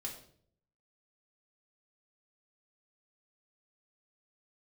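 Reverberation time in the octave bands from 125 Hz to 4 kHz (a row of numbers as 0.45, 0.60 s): 0.90, 0.75, 0.65, 0.50, 0.45, 0.45 s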